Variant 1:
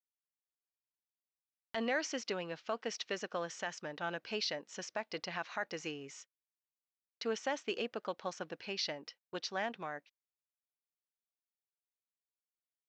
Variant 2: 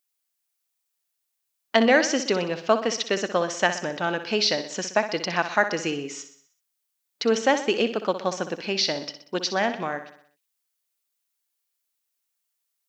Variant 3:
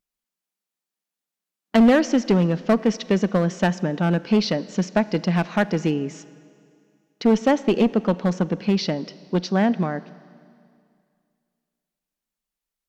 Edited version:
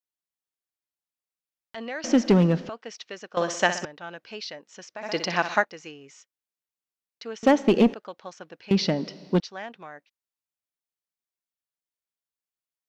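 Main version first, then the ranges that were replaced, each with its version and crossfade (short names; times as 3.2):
1
2.04–2.69 from 3
3.37–3.85 from 2
5.04–5.62 from 2, crossfade 0.06 s
7.43–7.94 from 3
8.71–9.4 from 3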